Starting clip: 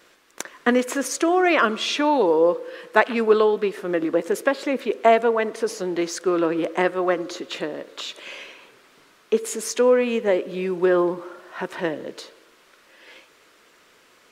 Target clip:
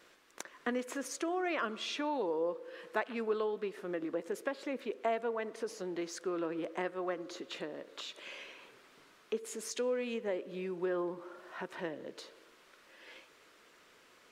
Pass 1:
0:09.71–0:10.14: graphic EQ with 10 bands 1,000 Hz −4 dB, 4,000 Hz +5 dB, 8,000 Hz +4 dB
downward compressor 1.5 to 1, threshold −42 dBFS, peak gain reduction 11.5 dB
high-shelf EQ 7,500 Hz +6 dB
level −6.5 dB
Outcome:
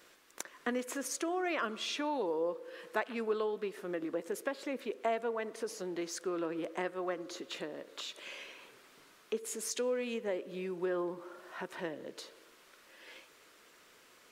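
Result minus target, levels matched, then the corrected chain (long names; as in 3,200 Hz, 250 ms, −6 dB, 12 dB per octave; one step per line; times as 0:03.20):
8,000 Hz band +4.0 dB
0:09.71–0:10.14: graphic EQ with 10 bands 1,000 Hz −4 dB, 4,000 Hz +5 dB, 8,000 Hz +4 dB
downward compressor 1.5 to 1, threshold −42 dBFS, peak gain reduction 11.5 dB
high-shelf EQ 7,500 Hz −3 dB
level −6.5 dB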